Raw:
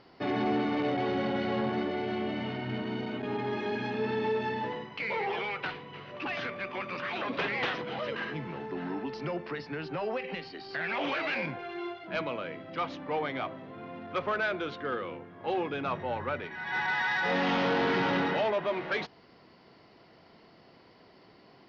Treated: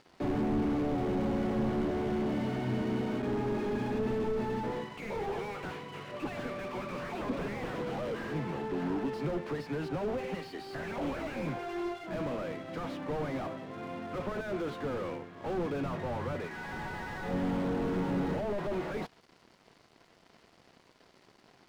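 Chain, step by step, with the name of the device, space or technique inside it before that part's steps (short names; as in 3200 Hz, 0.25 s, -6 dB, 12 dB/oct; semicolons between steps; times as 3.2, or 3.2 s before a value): early transistor amplifier (crossover distortion -57 dBFS; slew limiter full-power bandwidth 8.3 Hz); gain +4 dB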